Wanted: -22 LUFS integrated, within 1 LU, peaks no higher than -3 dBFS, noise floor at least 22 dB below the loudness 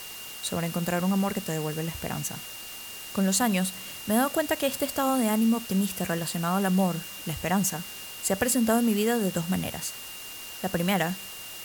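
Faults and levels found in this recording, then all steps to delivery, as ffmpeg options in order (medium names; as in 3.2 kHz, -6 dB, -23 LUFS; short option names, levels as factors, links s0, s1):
steady tone 2.8 kHz; tone level -43 dBFS; noise floor -40 dBFS; noise floor target -50 dBFS; loudness -27.5 LUFS; peak level -10.5 dBFS; loudness target -22.0 LUFS
-> -af "bandreject=f=2800:w=30"
-af "afftdn=nr=10:nf=-40"
-af "volume=1.88"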